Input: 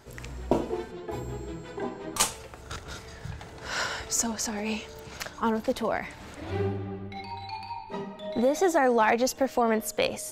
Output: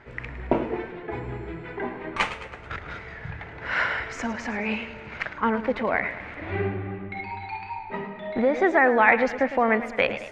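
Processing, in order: resonant low-pass 2.1 kHz, resonance Q 3.1; modulated delay 108 ms, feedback 54%, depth 104 cents, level -13 dB; trim +1.5 dB

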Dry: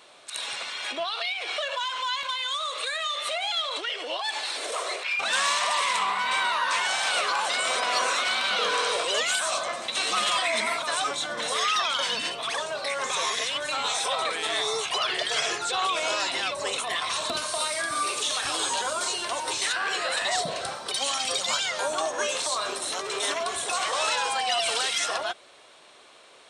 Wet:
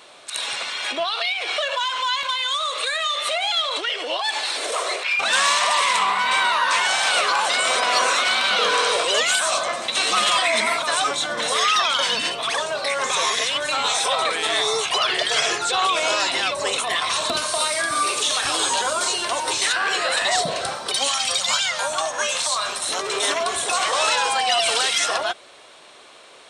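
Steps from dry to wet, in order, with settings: 21.08–22.89 s: peaking EQ 360 Hz -13 dB 1.1 oct; trim +6 dB

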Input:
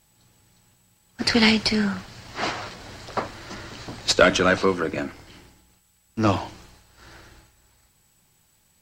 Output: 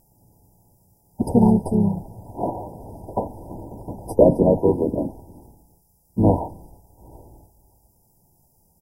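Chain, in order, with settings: brick-wall FIR band-stop 1–9.5 kHz; harmony voices -12 st -9 dB, -3 st -4 dB; trim +3 dB

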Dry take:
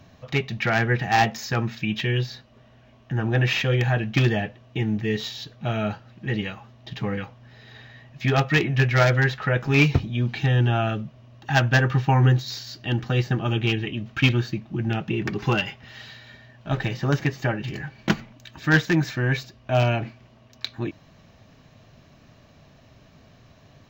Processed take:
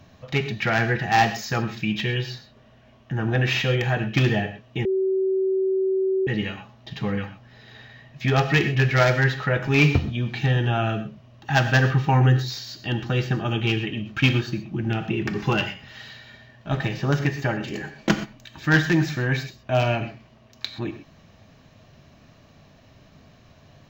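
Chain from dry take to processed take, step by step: 17.60–18.11 s: graphic EQ 125/250/500/8000 Hz -10/+5/+6/+7 dB; gated-style reverb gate 150 ms flat, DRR 8.5 dB; 4.85–6.27 s: bleep 381 Hz -19 dBFS

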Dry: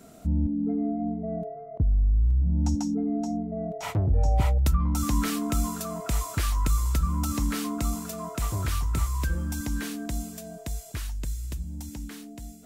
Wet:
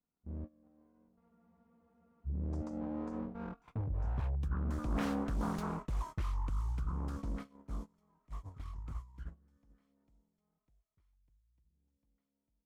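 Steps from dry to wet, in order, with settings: comb filter that takes the minimum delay 0.89 ms; Doppler pass-by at 4.92 s, 17 m/s, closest 2 m; low-pass 1.1 kHz 6 dB/octave; gate -56 dBFS, range -22 dB; reverse; compression 12:1, threshold -47 dBFS, peak gain reduction 26 dB; reverse; spectral freeze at 1.24 s, 1.03 s; loudspeaker Doppler distortion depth 0.77 ms; trim +15.5 dB

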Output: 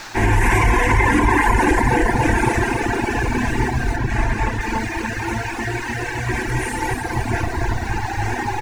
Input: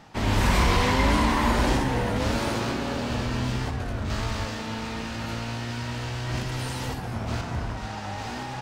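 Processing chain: static phaser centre 860 Hz, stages 8; feedback delay 281 ms, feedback 57%, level -4 dB; reverberation RT60 0.75 s, pre-delay 6 ms, DRR 3 dB; band noise 560–6000 Hz -47 dBFS; steep low-pass 12 kHz 96 dB/octave; reverb removal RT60 1.9 s; graphic EQ with 31 bands 160 Hz +4 dB, 1.6 kHz +7 dB, 3.15 kHz -8 dB, 5 kHz -4 dB; bit crusher 10-bit; 3.96–4.61 s: treble shelf 4.2 kHz -6.5 dB; loudness maximiser +17 dB; trim -5.5 dB

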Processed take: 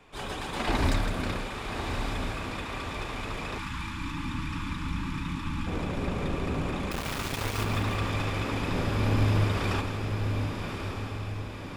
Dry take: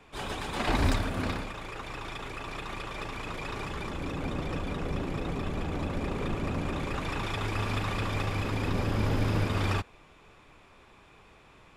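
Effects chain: de-hum 72.42 Hz, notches 38; on a send: echo that smears into a reverb 1166 ms, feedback 52%, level -5.5 dB; 6.91–7.64 s: on the sum: small samples zeroed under -28.5 dBFS; two-band feedback delay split 1.1 kHz, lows 86 ms, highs 161 ms, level -9 dB; 3.58–5.67 s: time-frequency box 330–830 Hz -22 dB

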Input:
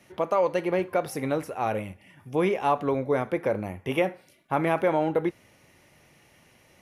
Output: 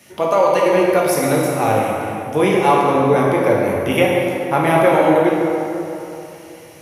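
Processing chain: high-pass 63 Hz; treble shelf 4.1 kHz +10 dB; plate-style reverb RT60 3 s, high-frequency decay 0.6×, DRR -3.5 dB; trim +5.5 dB

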